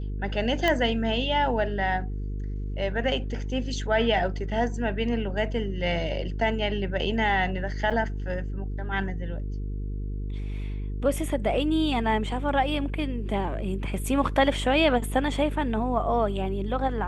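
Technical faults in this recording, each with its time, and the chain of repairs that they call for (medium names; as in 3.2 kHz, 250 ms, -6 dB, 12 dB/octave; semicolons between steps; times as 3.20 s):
buzz 50 Hz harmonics 9 -31 dBFS
0.68 s: pop -11 dBFS
7.90–7.91 s: dropout 6 ms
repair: de-click; de-hum 50 Hz, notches 9; interpolate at 7.90 s, 6 ms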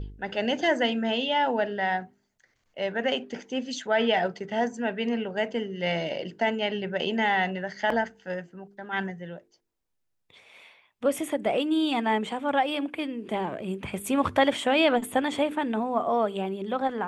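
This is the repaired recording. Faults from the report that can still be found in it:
0.68 s: pop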